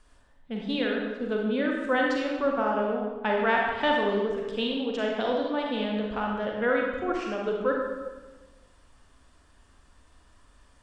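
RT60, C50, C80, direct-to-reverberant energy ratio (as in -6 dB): 1.2 s, 0.5 dB, 3.0 dB, -1.0 dB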